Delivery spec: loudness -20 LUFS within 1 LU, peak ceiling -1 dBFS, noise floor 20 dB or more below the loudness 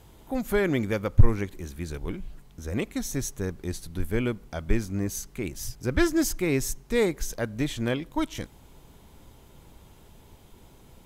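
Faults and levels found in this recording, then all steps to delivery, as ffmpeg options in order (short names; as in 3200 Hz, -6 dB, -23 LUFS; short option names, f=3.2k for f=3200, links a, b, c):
loudness -29.0 LUFS; peak -6.5 dBFS; loudness target -20.0 LUFS
-> -af "volume=9dB,alimiter=limit=-1dB:level=0:latency=1"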